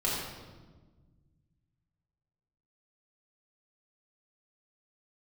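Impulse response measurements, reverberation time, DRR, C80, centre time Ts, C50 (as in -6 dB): 1.4 s, -6.5 dB, 1.5 dB, 83 ms, -0.5 dB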